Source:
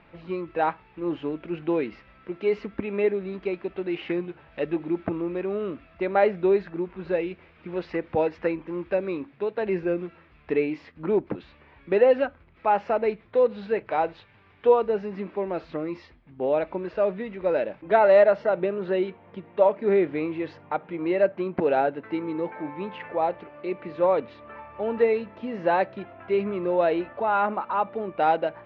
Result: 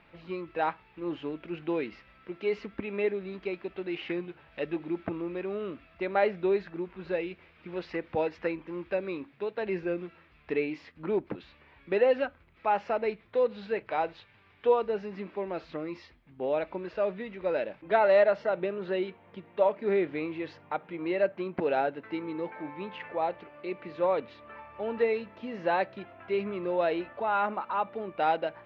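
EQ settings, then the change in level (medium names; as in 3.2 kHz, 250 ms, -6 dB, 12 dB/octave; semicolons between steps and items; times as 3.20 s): treble shelf 2 kHz +7.5 dB; -6.0 dB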